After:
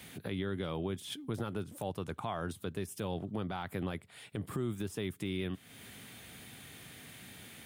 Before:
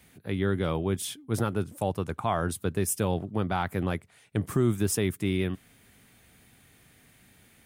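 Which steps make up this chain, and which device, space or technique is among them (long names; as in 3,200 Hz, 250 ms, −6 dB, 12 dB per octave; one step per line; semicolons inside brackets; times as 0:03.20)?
broadcast voice chain (high-pass filter 88 Hz 12 dB per octave; de-essing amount 90%; downward compressor 3 to 1, threshold −43 dBFS, peak gain reduction 17 dB; parametric band 3,400 Hz +5 dB 0.62 octaves; brickwall limiter −33 dBFS, peak gain reduction 8 dB)
0:03.71–0:04.75: notch filter 6,100 Hz, Q 5.3
level +7 dB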